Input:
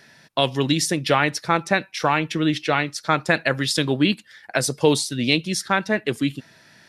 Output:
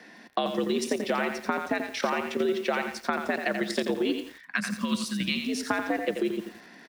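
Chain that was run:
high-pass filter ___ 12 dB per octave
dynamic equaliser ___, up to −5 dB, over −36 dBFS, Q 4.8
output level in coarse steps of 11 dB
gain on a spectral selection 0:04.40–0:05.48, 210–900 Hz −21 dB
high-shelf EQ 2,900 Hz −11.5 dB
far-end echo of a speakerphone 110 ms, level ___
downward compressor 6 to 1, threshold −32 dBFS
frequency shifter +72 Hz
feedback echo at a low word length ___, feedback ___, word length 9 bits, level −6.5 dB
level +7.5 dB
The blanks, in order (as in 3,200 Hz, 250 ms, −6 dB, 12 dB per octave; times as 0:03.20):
41 Hz, 880 Hz, −15 dB, 86 ms, 35%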